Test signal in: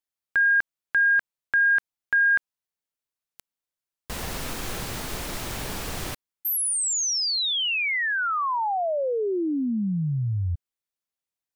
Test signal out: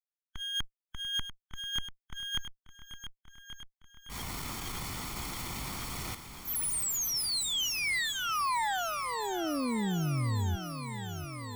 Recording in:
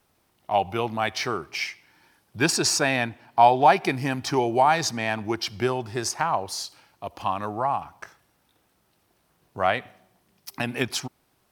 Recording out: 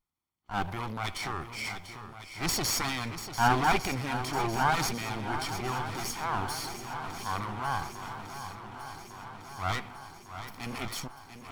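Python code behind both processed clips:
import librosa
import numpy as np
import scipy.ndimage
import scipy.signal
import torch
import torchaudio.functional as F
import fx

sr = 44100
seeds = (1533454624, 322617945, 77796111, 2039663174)

y = fx.lower_of_two(x, sr, delay_ms=0.9)
y = fx.transient(y, sr, attack_db=-7, sustain_db=6)
y = fx.noise_reduce_blind(y, sr, reduce_db=17)
y = fx.echo_swing(y, sr, ms=1153, ratio=1.5, feedback_pct=63, wet_db=-11)
y = y * 10.0 ** (-4.5 / 20.0)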